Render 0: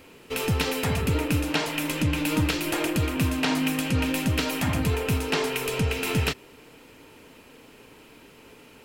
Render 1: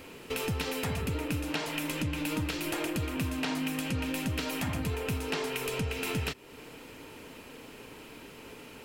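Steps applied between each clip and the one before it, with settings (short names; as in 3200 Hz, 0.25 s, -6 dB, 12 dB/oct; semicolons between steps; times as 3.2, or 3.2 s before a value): compressor 2.5:1, threshold -37 dBFS, peak gain reduction 12 dB; gain +2.5 dB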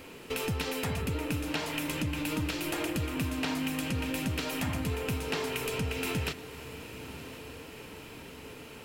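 diffused feedback echo 1.021 s, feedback 59%, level -14 dB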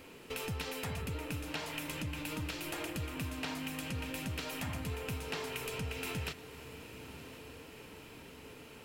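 dynamic EQ 290 Hz, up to -4 dB, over -44 dBFS, Q 1.2; gain -5.5 dB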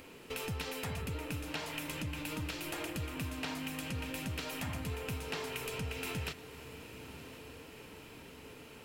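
upward compressor, threshold -56 dBFS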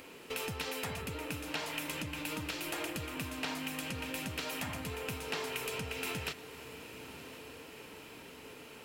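low shelf 150 Hz -10.5 dB; gain +2.5 dB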